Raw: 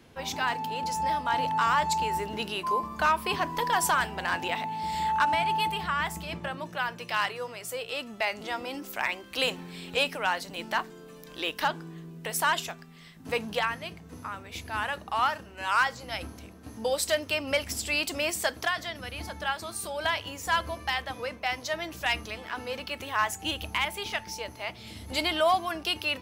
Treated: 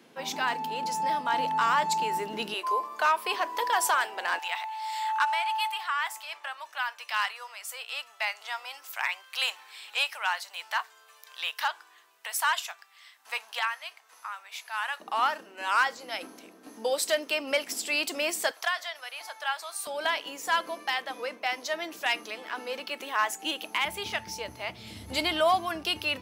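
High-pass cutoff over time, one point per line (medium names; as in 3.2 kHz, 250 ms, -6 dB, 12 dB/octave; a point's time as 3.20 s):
high-pass 24 dB/octave
190 Hz
from 2.54 s 400 Hz
from 4.39 s 830 Hz
from 15.00 s 260 Hz
from 18.51 s 660 Hz
from 19.87 s 260 Hz
from 23.85 s 75 Hz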